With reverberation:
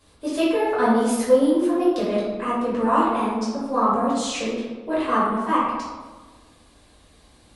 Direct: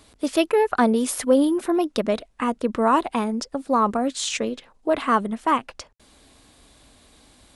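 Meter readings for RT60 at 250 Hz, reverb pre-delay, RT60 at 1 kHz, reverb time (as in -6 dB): 1.7 s, 4 ms, 1.3 s, 1.4 s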